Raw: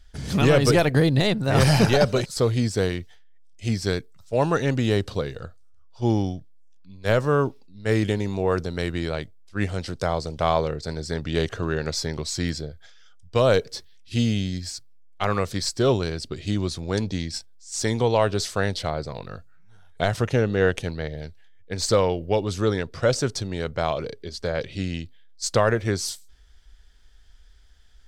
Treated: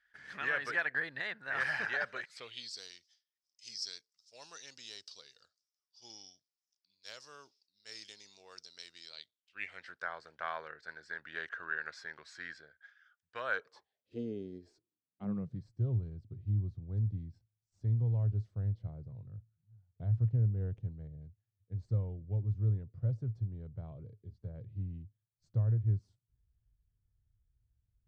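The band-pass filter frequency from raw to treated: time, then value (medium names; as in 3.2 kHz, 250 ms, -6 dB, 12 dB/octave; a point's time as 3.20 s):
band-pass filter, Q 6
2.22 s 1.7 kHz
2.81 s 5.2 kHz
9.06 s 5.2 kHz
9.90 s 1.6 kHz
13.51 s 1.6 kHz
14.22 s 400 Hz
14.74 s 400 Hz
15.74 s 110 Hz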